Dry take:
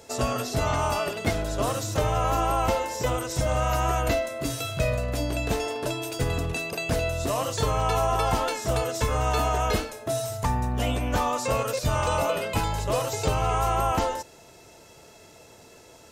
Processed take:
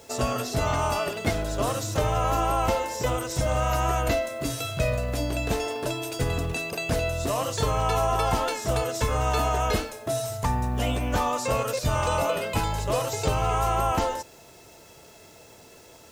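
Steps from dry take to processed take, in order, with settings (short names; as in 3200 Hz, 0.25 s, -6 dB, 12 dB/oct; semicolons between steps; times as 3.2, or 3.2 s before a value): added noise white -60 dBFS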